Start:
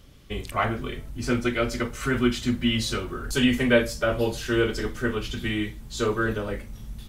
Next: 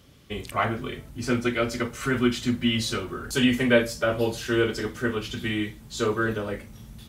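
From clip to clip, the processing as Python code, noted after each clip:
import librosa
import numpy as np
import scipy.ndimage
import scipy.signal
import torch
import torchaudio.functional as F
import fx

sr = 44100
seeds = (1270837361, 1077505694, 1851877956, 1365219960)

y = scipy.signal.sosfilt(scipy.signal.butter(2, 80.0, 'highpass', fs=sr, output='sos'), x)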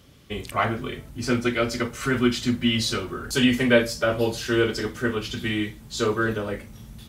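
y = fx.dynamic_eq(x, sr, hz=4800.0, q=2.3, threshold_db=-45.0, ratio=4.0, max_db=4)
y = y * librosa.db_to_amplitude(1.5)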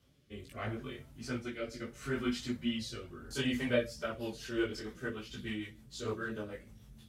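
y = fx.rotary_switch(x, sr, hz=0.75, then_hz=6.7, switch_at_s=3.55)
y = fx.chorus_voices(y, sr, voices=2, hz=0.74, base_ms=18, depth_ms=4.8, mix_pct=55)
y = y * librosa.db_to_amplitude(-9.0)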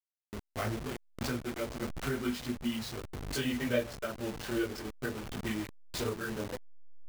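y = fx.delta_hold(x, sr, step_db=-39.5)
y = fx.recorder_agc(y, sr, target_db=-25.0, rise_db_per_s=13.0, max_gain_db=30)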